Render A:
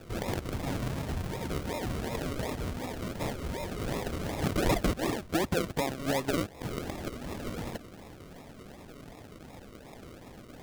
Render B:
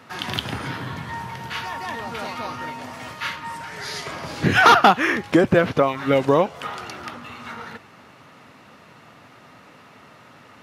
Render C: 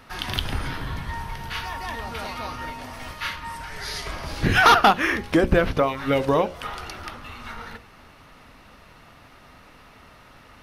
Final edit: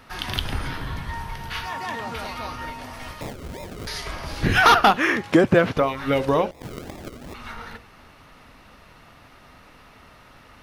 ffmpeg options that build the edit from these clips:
-filter_complex "[1:a]asplit=2[a][b];[0:a]asplit=2[c][d];[2:a]asplit=5[e][f][g][h][i];[e]atrim=end=1.682[j];[a]atrim=start=1.678:end=2.152[k];[f]atrim=start=2.148:end=3.212[l];[c]atrim=start=3.208:end=3.872[m];[g]atrim=start=3.868:end=4.972[n];[b]atrim=start=4.968:end=5.772[o];[h]atrim=start=5.768:end=6.512[p];[d]atrim=start=6.508:end=7.342[q];[i]atrim=start=7.338[r];[j][k]acrossfade=d=0.004:c1=hsin:c2=hsin[s];[s][l]acrossfade=d=0.004:c1=hsin:c2=hsin[t];[t][m]acrossfade=d=0.004:c1=hsin:c2=hsin[u];[u][n]acrossfade=d=0.004:c1=hsin:c2=hsin[v];[v][o]acrossfade=d=0.004:c1=hsin:c2=hsin[w];[w][p]acrossfade=d=0.004:c1=hsin:c2=hsin[x];[x][q]acrossfade=d=0.004:c1=hsin:c2=hsin[y];[y][r]acrossfade=d=0.004:c1=hsin:c2=hsin"

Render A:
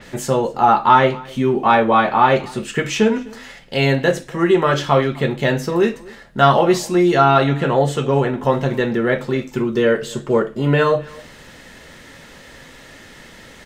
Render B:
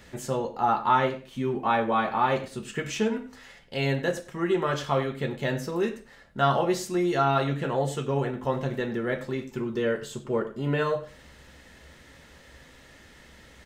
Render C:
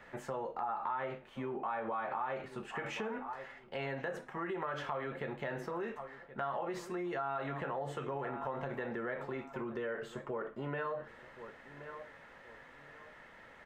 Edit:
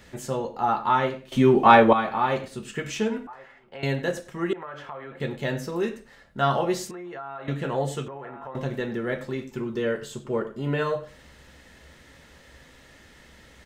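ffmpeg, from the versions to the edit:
-filter_complex "[2:a]asplit=4[a][b][c][d];[1:a]asplit=6[e][f][g][h][i][j];[e]atrim=end=1.322[k];[0:a]atrim=start=1.318:end=1.932[l];[f]atrim=start=1.928:end=3.272[m];[a]atrim=start=3.268:end=3.832[n];[g]atrim=start=3.828:end=4.532[o];[b]atrim=start=4.528:end=5.202[p];[h]atrim=start=5.198:end=6.912[q];[c]atrim=start=6.908:end=7.482[r];[i]atrim=start=7.478:end=8.082[s];[d]atrim=start=8.078:end=8.552[t];[j]atrim=start=8.548[u];[k][l]acrossfade=d=0.004:c1=hsin:c2=hsin[v];[v][m]acrossfade=d=0.004:c1=hsin:c2=hsin[w];[w][n]acrossfade=d=0.004:c1=hsin:c2=hsin[x];[x][o]acrossfade=d=0.004:c1=hsin:c2=hsin[y];[y][p]acrossfade=d=0.004:c1=hsin:c2=hsin[z];[z][q]acrossfade=d=0.004:c1=hsin:c2=hsin[aa];[aa][r]acrossfade=d=0.004:c1=hsin:c2=hsin[ab];[ab][s]acrossfade=d=0.004:c1=hsin:c2=hsin[ac];[ac][t]acrossfade=d=0.004:c1=hsin:c2=hsin[ad];[ad][u]acrossfade=d=0.004:c1=hsin:c2=hsin"

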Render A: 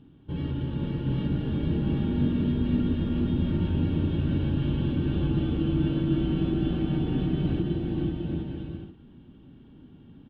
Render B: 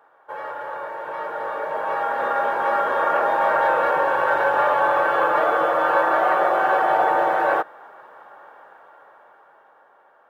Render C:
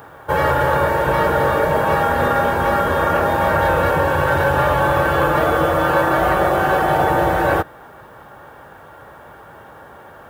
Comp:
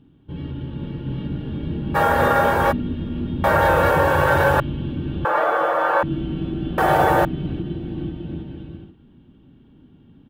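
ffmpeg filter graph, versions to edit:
-filter_complex "[2:a]asplit=3[a][b][c];[0:a]asplit=5[d][e][f][g][h];[d]atrim=end=1.96[i];[a]atrim=start=1.94:end=2.73[j];[e]atrim=start=2.71:end=3.442[k];[b]atrim=start=3.438:end=4.602[l];[f]atrim=start=4.598:end=5.252[m];[1:a]atrim=start=5.248:end=6.032[n];[g]atrim=start=6.028:end=6.782[o];[c]atrim=start=6.778:end=7.252[p];[h]atrim=start=7.248[q];[i][j]acrossfade=d=0.02:c1=tri:c2=tri[r];[r][k]acrossfade=d=0.02:c1=tri:c2=tri[s];[s][l]acrossfade=d=0.004:c1=hsin:c2=hsin[t];[t][m]acrossfade=d=0.004:c1=hsin:c2=hsin[u];[u][n]acrossfade=d=0.004:c1=hsin:c2=hsin[v];[v][o]acrossfade=d=0.004:c1=hsin:c2=hsin[w];[w][p]acrossfade=d=0.004:c1=hsin:c2=hsin[x];[x][q]acrossfade=d=0.004:c1=hsin:c2=hsin"

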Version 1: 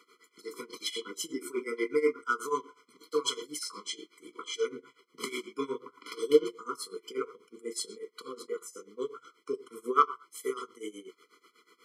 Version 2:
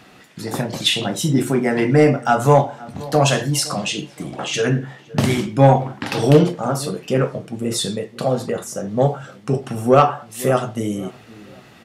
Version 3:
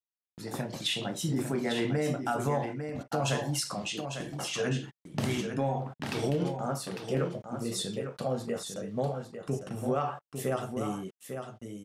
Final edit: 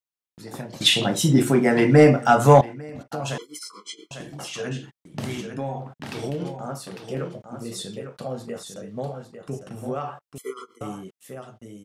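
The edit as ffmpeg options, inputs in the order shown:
-filter_complex "[0:a]asplit=2[a][b];[2:a]asplit=4[c][d][e][f];[c]atrim=end=0.812[g];[1:a]atrim=start=0.808:end=2.612[h];[d]atrim=start=2.608:end=3.382[i];[a]atrim=start=3.378:end=4.112[j];[e]atrim=start=4.108:end=10.382[k];[b]atrim=start=10.378:end=10.812[l];[f]atrim=start=10.808[m];[g][h]acrossfade=d=0.004:c1=hsin:c2=hsin[n];[n][i]acrossfade=d=0.004:c1=hsin:c2=hsin[o];[o][j]acrossfade=d=0.004:c1=hsin:c2=hsin[p];[p][k]acrossfade=d=0.004:c1=hsin:c2=hsin[q];[q][l]acrossfade=d=0.004:c1=hsin:c2=hsin[r];[r][m]acrossfade=d=0.004:c1=hsin:c2=hsin"

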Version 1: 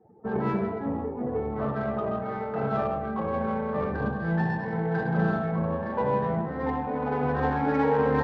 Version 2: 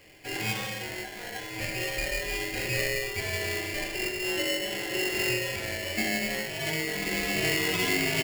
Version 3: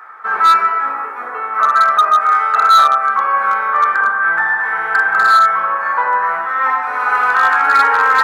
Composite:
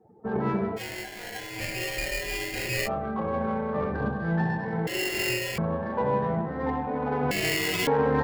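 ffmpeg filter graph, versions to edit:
-filter_complex "[1:a]asplit=3[a][b][c];[0:a]asplit=4[d][e][f][g];[d]atrim=end=0.8[h];[a]atrim=start=0.76:end=2.89[i];[e]atrim=start=2.85:end=4.872[j];[b]atrim=start=4.868:end=5.582[k];[f]atrim=start=5.578:end=7.312[l];[c]atrim=start=7.308:end=7.872[m];[g]atrim=start=7.868[n];[h][i]acrossfade=d=0.04:c1=tri:c2=tri[o];[o][j]acrossfade=d=0.04:c1=tri:c2=tri[p];[p][k]acrossfade=d=0.004:c1=hsin:c2=hsin[q];[q][l]acrossfade=d=0.004:c1=hsin:c2=hsin[r];[r][m]acrossfade=d=0.004:c1=hsin:c2=hsin[s];[s][n]acrossfade=d=0.004:c1=hsin:c2=hsin"

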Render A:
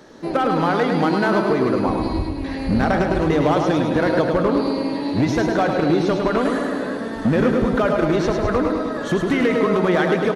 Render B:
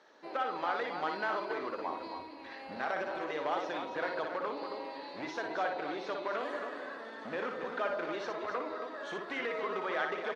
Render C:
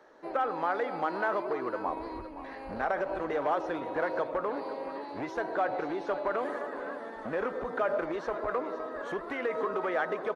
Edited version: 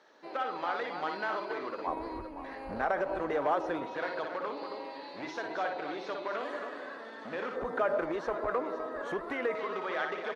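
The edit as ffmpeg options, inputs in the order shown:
-filter_complex "[2:a]asplit=2[a][b];[1:a]asplit=3[c][d][e];[c]atrim=end=1.872[f];[a]atrim=start=1.868:end=3.862[g];[d]atrim=start=3.858:end=7.562[h];[b]atrim=start=7.558:end=9.552[i];[e]atrim=start=9.548[j];[f][g]acrossfade=d=0.004:c1=hsin:c2=hsin[k];[k][h]acrossfade=d=0.004:c1=hsin:c2=hsin[l];[l][i]acrossfade=d=0.004:c1=hsin:c2=hsin[m];[m][j]acrossfade=d=0.004:c1=hsin:c2=hsin"

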